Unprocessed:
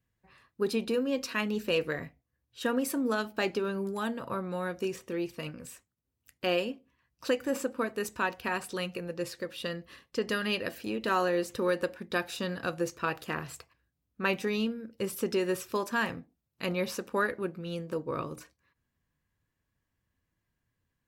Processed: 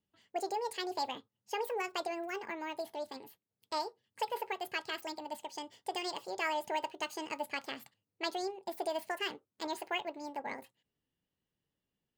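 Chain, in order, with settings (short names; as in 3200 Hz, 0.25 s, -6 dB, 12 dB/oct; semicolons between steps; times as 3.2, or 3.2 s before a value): wide varispeed 1.73×; tone controls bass -3 dB, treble -3 dB; gain -6 dB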